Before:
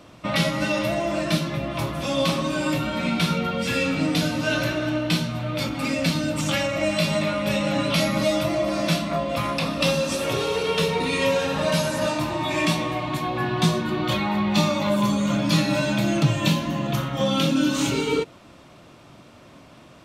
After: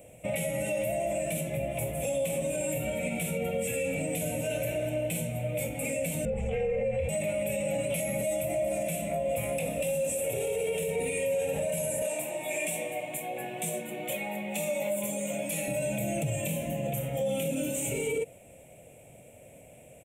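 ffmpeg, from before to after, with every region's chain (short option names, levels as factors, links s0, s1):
-filter_complex "[0:a]asettb=1/sr,asplit=3[s0][s1][s2];[s0]atrim=end=6.254[s3];[s1]atrim=start=6.25:end=7.09,asetpts=PTS-STARTPTS,afade=t=in:d=0.004:c=qsin,afade=t=out:st=0.836:d=0.004:c=qsin,lowpass=1900,afreqshift=-87[s4];[s2]atrim=start=7.086[s5];[s3][s4]acrossfade=d=0.004:c1=hsin:c2=qsin[s6];[s6][s5]acrossfade=d=0.004:c1=qsin:c2=hsin,asettb=1/sr,asplit=3[s7][s8][s9];[s7]atrim=end=12.024[s10];[s8]atrim=start=12.02:end=15.68,asetpts=PTS-STARTPTS,afade=t=in:d=0.004:c=qsin,afade=t=out:st=3.656:d=0.004:c=qsin,highpass=f=170:w=0.5412,highpass=f=170:w=1.3066,lowshelf=f=500:g=-7[s11];[s9]atrim=start=15.676[s12];[s10][s11]acrossfade=d=0.004:c1=hsin:c2=qsin[s13];[s13][s12]acrossfade=d=0.004:c1=qsin:c2=hsin,firequalizer=gain_entry='entry(110,0);entry(330,-9);entry(490,8);entry(790,-2);entry(1100,-25);entry(2300,2);entry(4600,-25);entry(7700,13)':delay=0.05:min_phase=1,alimiter=limit=0.119:level=0:latency=1:release=48,volume=0.631"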